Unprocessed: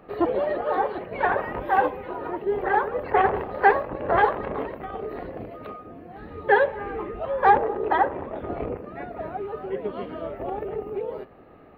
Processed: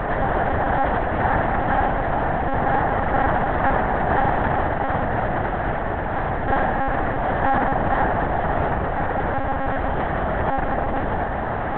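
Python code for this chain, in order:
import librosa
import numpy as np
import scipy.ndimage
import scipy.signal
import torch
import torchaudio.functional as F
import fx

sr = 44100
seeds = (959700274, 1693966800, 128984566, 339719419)

y = fx.bin_compress(x, sr, power=0.2)
y = fx.lpc_monotone(y, sr, seeds[0], pitch_hz=270.0, order=8)
y = y * 10.0 ** (-8.0 / 20.0)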